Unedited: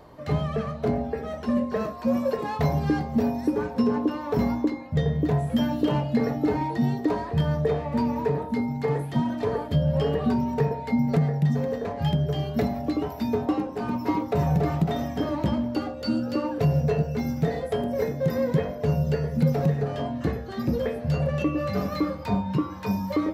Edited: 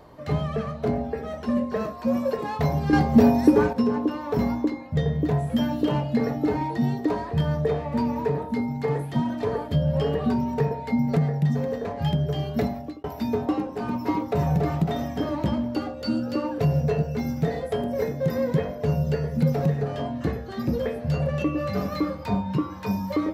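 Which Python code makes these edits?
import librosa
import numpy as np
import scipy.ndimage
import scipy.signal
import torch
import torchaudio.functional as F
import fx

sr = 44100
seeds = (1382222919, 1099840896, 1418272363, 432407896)

y = fx.edit(x, sr, fx.clip_gain(start_s=2.93, length_s=0.8, db=8.0),
    fx.fade_out_span(start_s=12.65, length_s=0.39), tone=tone)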